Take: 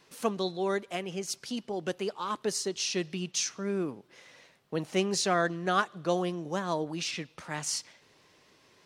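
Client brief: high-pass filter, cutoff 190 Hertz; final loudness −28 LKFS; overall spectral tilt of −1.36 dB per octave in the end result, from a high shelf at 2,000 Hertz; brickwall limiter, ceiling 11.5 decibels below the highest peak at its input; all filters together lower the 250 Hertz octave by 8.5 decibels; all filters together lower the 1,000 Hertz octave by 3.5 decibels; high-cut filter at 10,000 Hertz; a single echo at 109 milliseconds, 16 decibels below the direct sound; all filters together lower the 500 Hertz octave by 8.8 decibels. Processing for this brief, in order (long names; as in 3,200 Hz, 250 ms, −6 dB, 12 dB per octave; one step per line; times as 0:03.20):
high-pass filter 190 Hz
low-pass filter 10,000 Hz
parametric band 250 Hz −7 dB
parametric band 500 Hz −9 dB
parametric band 1,000 Hz −3.5 dB
high-shelf EQ 2,000 Hz +7 dB
brickwall limiter −23 dBFS
single-tap delay 109 ms −16 dB
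level +7 dB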